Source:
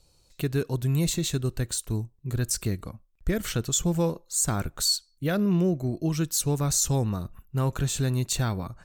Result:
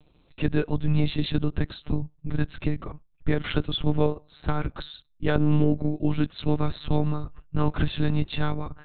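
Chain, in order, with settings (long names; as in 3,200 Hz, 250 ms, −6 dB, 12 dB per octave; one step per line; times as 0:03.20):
one-pitch LPC vocoder at 8 kHz 150 Hz
level +3.5 dB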